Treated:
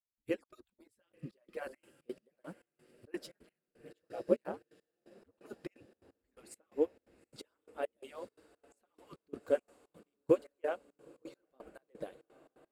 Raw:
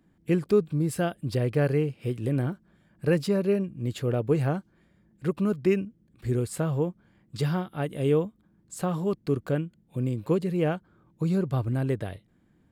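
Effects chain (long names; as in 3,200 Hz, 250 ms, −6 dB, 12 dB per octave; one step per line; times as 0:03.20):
harmonic-percussive split with one part muted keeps percussive
0:03.26–0:05.36: ring modulation 94 Hz
flanger 1.7 Hz, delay 0.5 ms, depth 6.7 ms, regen −54%
feedback delay with all-pass diffusion 904 ms, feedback 71%, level −13 dB
dynamic equaliser 550 Hz, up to +6 dB, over −48 dBFS, Q 3
gate pattern "..xxx.xx.x...xx" 172 BPM −24 dB
expander for the loud parts 1.5 to 1, over −49 dBFS
level +1 dB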